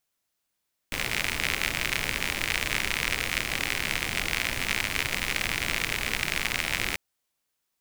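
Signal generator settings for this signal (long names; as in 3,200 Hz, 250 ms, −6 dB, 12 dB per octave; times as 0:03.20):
rain-like ticks over hiss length 6.04 s, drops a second 77, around 2,200 Hz, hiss −4.5 dB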